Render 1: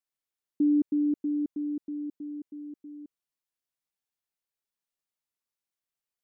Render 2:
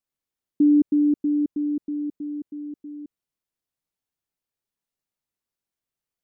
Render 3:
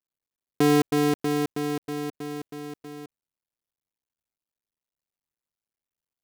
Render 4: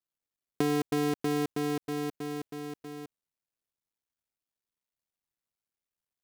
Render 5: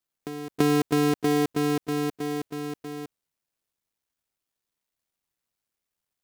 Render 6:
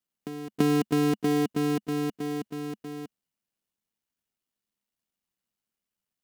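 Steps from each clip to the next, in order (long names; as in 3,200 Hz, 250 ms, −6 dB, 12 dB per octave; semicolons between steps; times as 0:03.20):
low-shelf EQ 500 Hz +9 dB
sub-harmonics by changed cycles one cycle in 2, muted
downward compressor, threshold −22 dBFS, peak gain reduction 7 dB; level −2 dB
backwards echo 336 ms −14 dB; level +6 dB
hollow resonant body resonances 210/2,900 Hz, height 9 dB, ringing for 35 ms; level −4 dB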